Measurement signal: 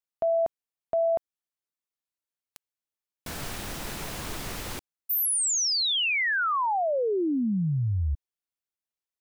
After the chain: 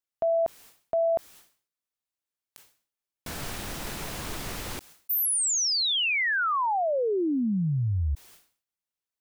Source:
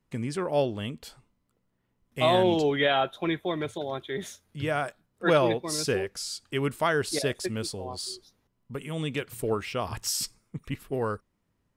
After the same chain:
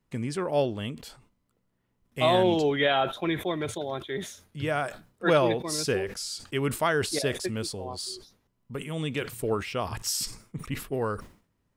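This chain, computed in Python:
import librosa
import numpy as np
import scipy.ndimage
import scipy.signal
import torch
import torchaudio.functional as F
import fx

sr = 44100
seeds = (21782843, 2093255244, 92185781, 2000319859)

y = fx.sustainer(x, sr, db_per_s=130.0)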